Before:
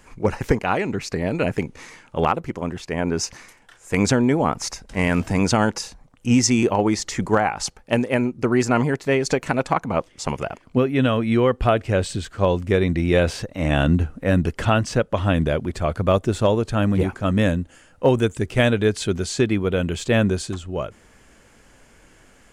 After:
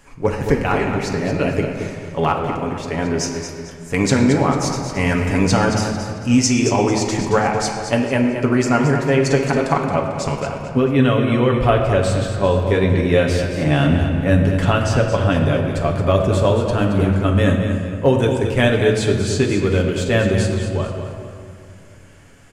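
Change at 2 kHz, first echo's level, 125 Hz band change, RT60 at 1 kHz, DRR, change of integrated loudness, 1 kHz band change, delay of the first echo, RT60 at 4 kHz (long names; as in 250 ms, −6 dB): +3.0 dB, −9.0 dB, +5.0 dB, 2.1 s, 0.0 dB, +3.5 dB, +3.0 dB, 223 ms, 1.6 s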